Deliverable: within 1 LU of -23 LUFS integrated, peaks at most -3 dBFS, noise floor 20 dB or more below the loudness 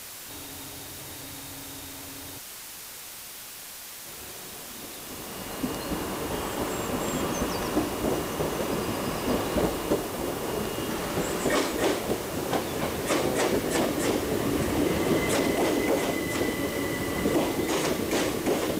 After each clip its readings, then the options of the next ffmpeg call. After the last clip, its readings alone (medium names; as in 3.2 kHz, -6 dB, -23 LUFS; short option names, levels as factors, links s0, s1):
noise floor -42 dBFS; noise floor target -49 dBFS; loudness -29.0 LUFS; peak level -12.5 dBFS; loudness target -23.0 LUFS
-> -af "afftdn=nr=7:nf=-42"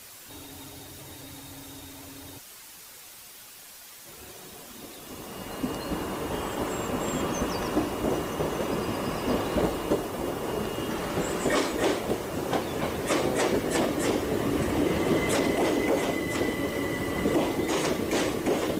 noise floor -47 dBFS; noise floor target -48 dBFS
-> -af "afftdn=nr=6:nf=-47"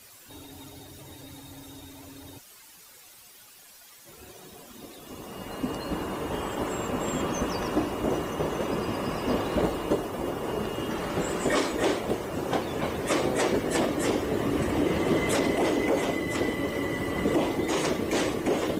noise floor -51 dBFS; loudness -28.0 LUFS; peak level -12.5 dBFS; loudness target -23.0 LUFS
-> -af "volume=1.78"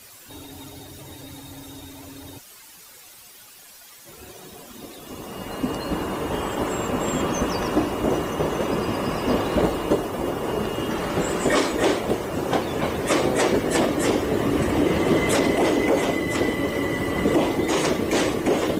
loudness -23.0 LUFS; peak level -7.5 dBFS; noise floor -46 dBFS